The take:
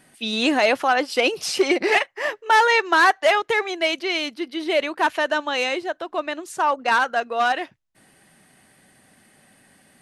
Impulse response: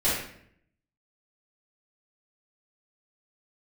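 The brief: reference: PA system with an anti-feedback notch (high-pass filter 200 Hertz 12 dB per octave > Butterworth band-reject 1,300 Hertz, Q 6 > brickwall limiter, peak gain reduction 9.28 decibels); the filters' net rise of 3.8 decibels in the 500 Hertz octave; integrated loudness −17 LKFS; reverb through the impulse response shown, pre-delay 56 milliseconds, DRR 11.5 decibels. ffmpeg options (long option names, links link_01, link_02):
-filter_complex "[0:a]equalizer=frequency=500:width_type=o:gain=5,asplit=2[link_01][link_02];[1:a]atrim=start_sample=2205,adelay=56[link_03];[link_02][link_03]afir=irnorm=-1:irlink=0,volume=-24.5dB[link_04];[link_01][link_04]amix=inputs=2:normalize=0,highpass=200,asuperstop=centerf=1300:order=8:qfactor=6,volume=6dB,alimiter=limit=-7dB:level=0:latency=1"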